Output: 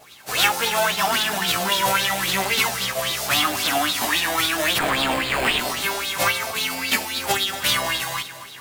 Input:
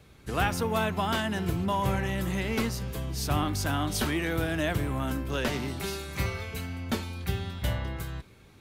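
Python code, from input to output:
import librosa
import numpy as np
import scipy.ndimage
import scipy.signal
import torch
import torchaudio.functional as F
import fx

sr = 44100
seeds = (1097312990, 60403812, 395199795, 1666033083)

p1 = fx.envelope_flatten(x, sr, power=0.3)
p2 = scipy.signal.sosfilt(scipy.signal.butter(2, 140.0, 'highpass', fs=sr, output='sos'), p1)
p3 = fx.rider(p2, sr, range_db=10, speed_s=0.5)
p4 = p2 + (p3 * 10.0 ** (-1.0 / 20.0))
p5 = fx.mod_noise(p4, sr, seeds[0], snr_db=11)
p6 = fx.sample_hold(p5, sr, seeds[1], rate_hz=5800.0, jitter_pct=0, at=(4.77, 5.59))
p7 = fx.wow_flutter(p6, sr, seeds[2], rate_hz=2.1, depth_cents=23.0)
p8 = fx.chorus_voices(p7, sr, voices=2, hz=0.41, base_ms=16, depth_ms=1.2, mix_pct=55)
p9 = p8 + fx.echo_feedback(p8, sr, ms=230, feedback_pct=56, wet_db=-13.5, dry=0)
y = fx.bell_lfo(p9, sr, hz=3.7, low_hz=640.0, high_hz=3900.0, db=14)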